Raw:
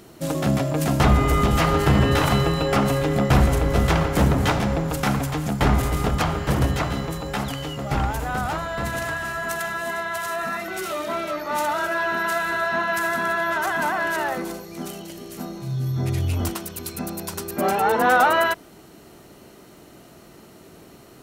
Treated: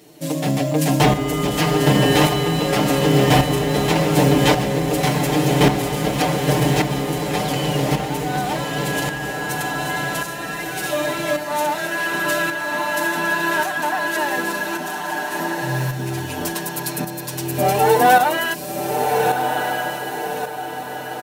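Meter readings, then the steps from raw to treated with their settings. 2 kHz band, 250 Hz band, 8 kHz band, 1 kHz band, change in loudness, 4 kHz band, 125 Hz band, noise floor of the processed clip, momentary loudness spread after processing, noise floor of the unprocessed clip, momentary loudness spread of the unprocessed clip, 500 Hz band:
+3.0 dB, +4.0 dB, +6.5 dB, +3.5 dB, +2.5 dB, +7.0 dB, +1.5 dB, -29 dBFS, 10 LU, -48 dBFS, 12 LU, +5.0 dB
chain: high-pass 64 Hz; peaking EQ 1.3 kHz -12.5 dB 0.51 oct; comb 6.7 ms, depth 95%; on a send: echo that smears into a reverb 1298 ms, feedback 45%, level -3.5 dB; on the sum: tremolo saw up 0.88 Hz, depth 50%; in parallel at -8 dB: short-mantissa float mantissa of 2-bit; on the sum: peaking EQ 84 Hz -11.5 dB 1.6 oct; trim +1.5 dB

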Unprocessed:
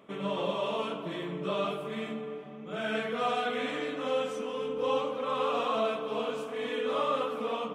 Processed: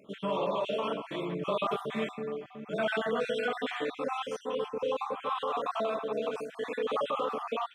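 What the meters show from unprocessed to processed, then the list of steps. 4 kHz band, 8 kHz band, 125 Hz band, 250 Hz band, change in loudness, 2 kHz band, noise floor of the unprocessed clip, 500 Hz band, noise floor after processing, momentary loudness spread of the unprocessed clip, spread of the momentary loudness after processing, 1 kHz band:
-2.0 dB, no reading, -1.0 dB, -1.5 dB, -1.0 dB, 0.0 dB, -42 dBFS, -0.5 dB, -52 dBFS, 7 LU, 5 LU, -0.5 dB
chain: random holes in the spectrogram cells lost 40%; dynamic bell 810 Hz, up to +5 dB, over -41 dBFS, Q 0.72; peak limiter -22.5 dBFS, peak gain reduction 7.5 dB; gain riding 2 s

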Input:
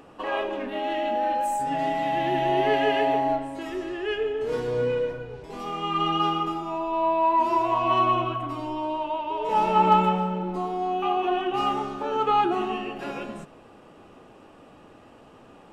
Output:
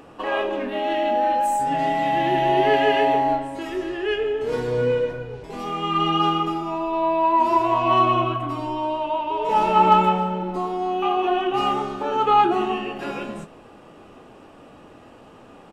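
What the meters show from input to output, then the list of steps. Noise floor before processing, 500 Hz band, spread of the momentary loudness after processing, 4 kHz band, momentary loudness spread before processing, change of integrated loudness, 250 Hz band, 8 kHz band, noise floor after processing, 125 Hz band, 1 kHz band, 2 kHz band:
-51 dBFS, +3.5 dB, 10 LU, +4.0 dB, 10 LU, +3.5 dB, +3.5 dB, no reading, -47 dBFS, +3.5 dB, +4.0 dB, +4.0 dB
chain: doubling 24 ms -11 dB; trim +3.5 dB

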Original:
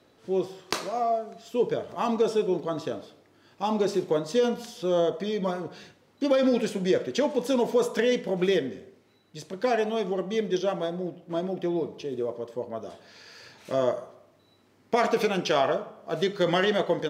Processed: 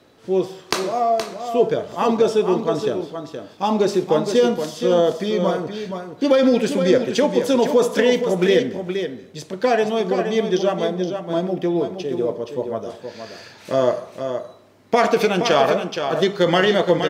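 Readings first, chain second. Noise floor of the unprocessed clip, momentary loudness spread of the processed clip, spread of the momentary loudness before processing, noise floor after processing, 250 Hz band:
-62 dBFS, 11 LU, 12 LU, -46 dBFS, +7.5 dB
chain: delay 471 ms -7.5 dB; trim +7 dB

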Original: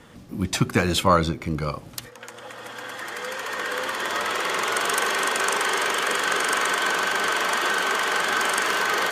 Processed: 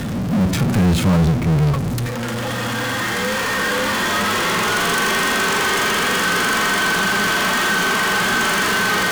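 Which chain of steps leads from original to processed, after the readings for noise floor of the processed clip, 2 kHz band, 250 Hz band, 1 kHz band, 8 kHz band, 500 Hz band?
-23 dBFS, +6.0 dB, +10.5 dB, +4.0 dB, +5.0 dB, +4.0 dB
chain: harmonic-percussive split percussive -14 dB; resonant low shelf 300 Hz +10 dB, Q 1.5; power-law waveshaper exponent 0.35; trim -4 dB

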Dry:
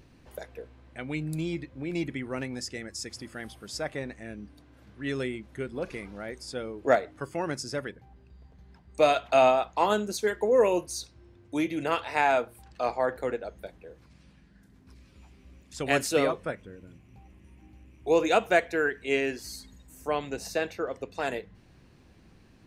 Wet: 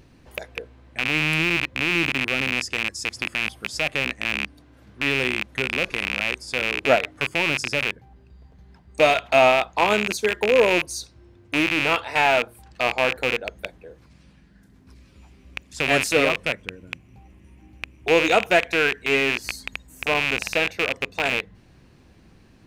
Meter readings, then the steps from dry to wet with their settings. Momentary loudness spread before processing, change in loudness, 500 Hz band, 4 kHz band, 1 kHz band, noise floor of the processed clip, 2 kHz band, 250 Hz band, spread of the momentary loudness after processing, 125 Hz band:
19 LU, +7.0 dB, +3.5 dB, +13.0 dB, +4.0 dB, -54 dBFS, +12.5 dB, +3.5 dB, 17 LU, +5.0 dB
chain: rattle on loud lows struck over -45 dBFS, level -14 dBFS; trim +4 dB

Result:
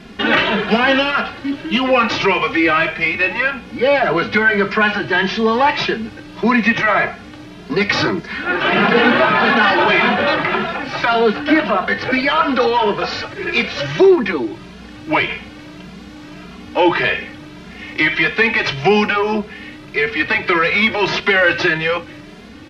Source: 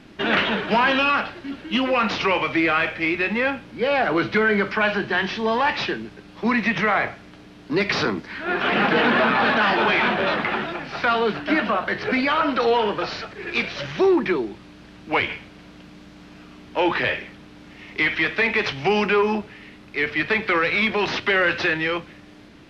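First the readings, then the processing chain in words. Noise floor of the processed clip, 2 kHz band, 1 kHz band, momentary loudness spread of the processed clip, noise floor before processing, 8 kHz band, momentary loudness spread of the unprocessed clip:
-37 dBFS, +6.0 dB, +5.0 dB, 11 LU, -46 dBFS, no reading, 10 LU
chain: in parallel at -2 dB: compression, threshold -30 dBFS, peak gain reduction 14.5 dB; on the sum: endless flanger 2.5 ms +1.7 Hz; trim +7 dB

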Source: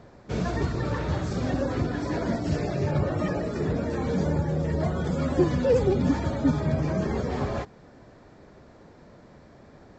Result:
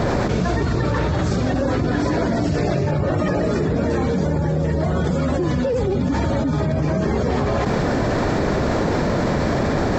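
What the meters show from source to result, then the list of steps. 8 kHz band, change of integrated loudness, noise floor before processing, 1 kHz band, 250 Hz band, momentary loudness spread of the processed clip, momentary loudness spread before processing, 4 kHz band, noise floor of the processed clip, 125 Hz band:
no reading, +6.0 dB, -52 dBFS, +10.0 dB, +7.0 dB, 0 LU, 6 LU, +10.0 dB, -21 dBFS, +7.0 dB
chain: level flattener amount 100%; trim -3 dB

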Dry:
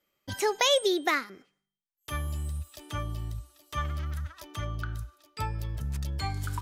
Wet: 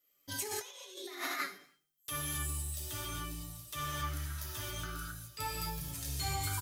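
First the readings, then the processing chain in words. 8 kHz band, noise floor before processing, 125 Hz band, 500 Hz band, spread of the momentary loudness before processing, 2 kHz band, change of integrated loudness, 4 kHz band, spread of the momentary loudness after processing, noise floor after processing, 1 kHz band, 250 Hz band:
+0.5 dB, under -85 dBFS, -7.5 dB, -16.5 dB, 15 LU, -7.0 dB, -7.5 dB, -9.0 dB, 8 LU, -74 dBFS, -7.0 dB, -9.0 dB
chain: pre-emphasis filter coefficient 0.8; feedback delay 96 ms, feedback 45%, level -21 dB; gated-style reverb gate 300 ms flat, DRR -6.5 dB; flange 0.53 Hz, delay 6.4 ms, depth 1.8 ms, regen +43%; compressor with a negative ratio -39 dBFS, ratio -0.5; trim +3 dB

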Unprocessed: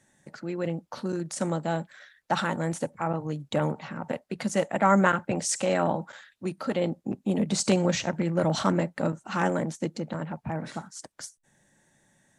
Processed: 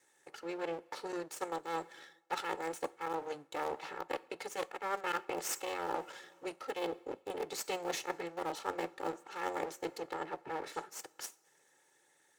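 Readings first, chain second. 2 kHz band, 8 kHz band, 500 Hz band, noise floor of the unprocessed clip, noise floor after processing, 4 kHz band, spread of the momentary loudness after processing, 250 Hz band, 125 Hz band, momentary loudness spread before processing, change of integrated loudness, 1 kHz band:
-9.5 dB, -10.5 dB, -10.5 dB, -68 dBFS, -71 dBFS, -8.5 dB, 7 LU, -17.5 dB, -28.0 dB, 12 LU, -11.5 dB, -8.0 dB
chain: comb filter that takes the minimum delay 2.3 ms; in parallel at -11.5 dB: small samples zeroed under -21 dBFS; on the sum: two-slope reverb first 0.39 s, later 2.7 s, from -16 dB, DRR 17 dB; reverse; compression 10:1, threshold -31 dBFS, peak gain reduction 17.5 dB; reverse; high-pass 320 Hz 12 dB/octave; Chebyshev shaper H 7 -29 dB, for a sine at -19.5 dBFS

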